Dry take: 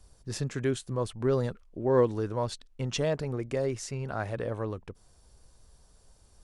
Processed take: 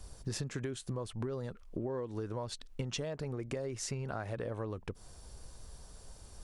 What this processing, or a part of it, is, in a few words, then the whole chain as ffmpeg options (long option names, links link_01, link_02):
serial compression, leveller first: -af "acompressor=threshold=-29dB:ratio=3,acompressor=threshold=-42dB:ratio=10,volume=7.5dB"